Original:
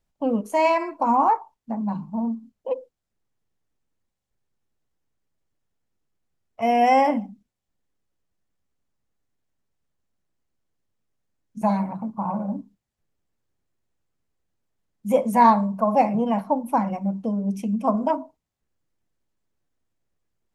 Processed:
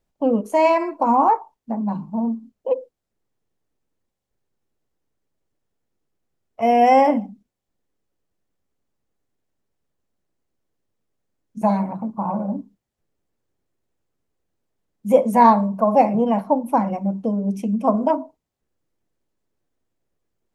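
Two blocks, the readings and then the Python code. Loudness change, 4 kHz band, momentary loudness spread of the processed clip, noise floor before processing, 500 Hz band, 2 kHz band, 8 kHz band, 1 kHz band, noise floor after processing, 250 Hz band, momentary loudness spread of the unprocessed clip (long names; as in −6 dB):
+3.0 dB, 0.0 dB, 12 LU, −83 dBFS, +5.0 dB, +0.5 dB, can't be measured, +2.5 dB, −82 dBFS, +3.0 dB, 14 LU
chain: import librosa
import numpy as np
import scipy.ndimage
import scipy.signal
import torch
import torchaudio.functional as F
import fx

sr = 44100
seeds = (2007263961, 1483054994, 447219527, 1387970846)

y = fx.peak_eq(x, sr, hz=420.0, db=6.0, octaves=1.8)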